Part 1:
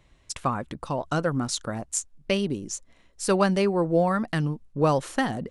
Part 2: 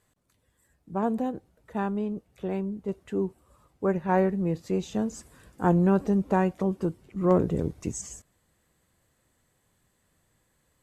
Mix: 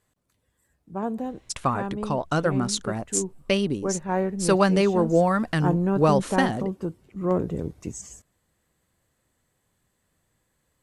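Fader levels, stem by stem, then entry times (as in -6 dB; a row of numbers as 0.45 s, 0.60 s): +2.0 dB, -2.0 dB; 1.20 s, 0.00 s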